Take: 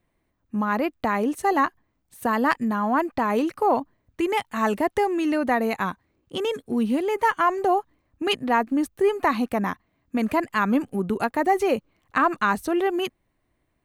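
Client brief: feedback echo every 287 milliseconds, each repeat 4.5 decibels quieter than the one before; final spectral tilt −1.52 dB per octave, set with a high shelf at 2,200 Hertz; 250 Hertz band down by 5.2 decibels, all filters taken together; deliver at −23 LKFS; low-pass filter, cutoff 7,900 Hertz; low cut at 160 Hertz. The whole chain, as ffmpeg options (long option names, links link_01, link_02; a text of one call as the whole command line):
ffmpeg -i in.wav -af "highpass=160,lowpass=7900,equalizer=frequency=250:width_type=o:gain=-6,highshelf=frequency=2200:gain=4.5,aecho=1:1:287|574|861|1148|1435|1722|2009|2296|2583:0.596|0.357|0.214|0.129|0.0772|0.0463|0.0278|0.0167|0.01,volume=0.5dB" out.wav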